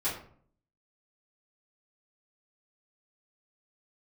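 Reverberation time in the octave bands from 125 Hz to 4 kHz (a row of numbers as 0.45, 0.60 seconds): 0.75, 0.70, 0.55, 0.50, 0.40, 0.30 seconds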